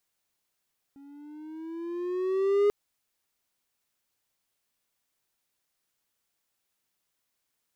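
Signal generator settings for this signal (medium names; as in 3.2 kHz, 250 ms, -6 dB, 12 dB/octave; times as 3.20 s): gliding synth tone triangle, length 1.74 s, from 276 Hz, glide +7 st, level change +29 dB, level -16.5 dB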